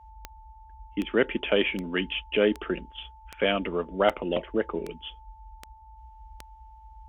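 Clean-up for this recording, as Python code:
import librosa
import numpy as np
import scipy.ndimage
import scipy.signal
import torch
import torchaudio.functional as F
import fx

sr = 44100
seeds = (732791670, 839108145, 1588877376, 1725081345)

y = fx.fix_declick_ar(x, sr, threshold=10.0)
y = fx.notch(y, sr, hz=880.0, q=30.0)
y = fx.noise_reduce(y, sr, print_start_s=5.64, print_end_s=6.14, reduce_db=22.0)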